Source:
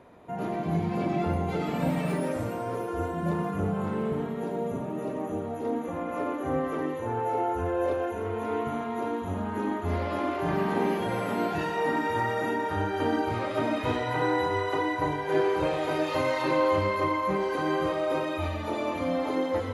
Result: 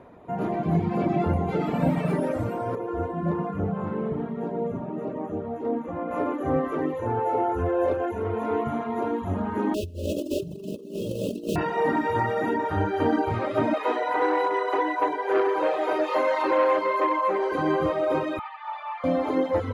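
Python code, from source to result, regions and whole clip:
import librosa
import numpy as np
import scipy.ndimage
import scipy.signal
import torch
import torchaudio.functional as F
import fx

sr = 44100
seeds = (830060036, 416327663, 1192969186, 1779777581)

y = fx.chain(x, sr, fx.high_shelf(hz=5900.0, db=-11.0),
    fx.comb_fb(f0_hz=58.0, decay_s=0.38, harmonics='all', damping=0.0, mix_pct=40), at=(2.75, 6.11))
y = fx.chain(y, sr, fx.quant_dither(seeds[0], bits=6, dither='none'),
    fx.brickwall_bandstop(low_hz=650.0, high_hz=2500.0),
    fx.over_compress(threshold_db=-33.0, ratio=-0.5), at=(9.74, 11.56))
y = fx.chain(y, sr, fx.highpass(hz=320.0, slope=24),
    fx.peak_eq(hz=960.0, db=3.0, octaves=1.4),
    fx.transformer_sat(knee_hz=990.0), at=(13.74, 17.52))
y = fx.chain(y, sr, fx.steep_highpass(hz=790.0, slope=48),
    fx.air_absorb(metres=280.0),
    fx.comb(ms=2.3, depth=0.36), at=(18.39, 19.04))
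y = fx.dereverb_blind(y, sr, rt60_s=0.57)
y = fx.high_shelf(y, sr, hz=2700.0, db=-11.0)
y = F.gain(torch.from_numpy(y), 5.5).numpy()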